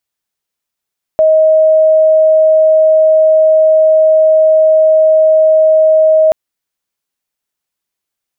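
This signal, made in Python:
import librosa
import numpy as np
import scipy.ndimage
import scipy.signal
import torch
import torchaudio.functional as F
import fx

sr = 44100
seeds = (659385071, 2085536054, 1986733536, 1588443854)

y = 10.0 ** (-4.5 / 20.0) * np.sin(2.0 * np.pi * (630.0 * (np.arange(round(5.13 * sr)) / sr)))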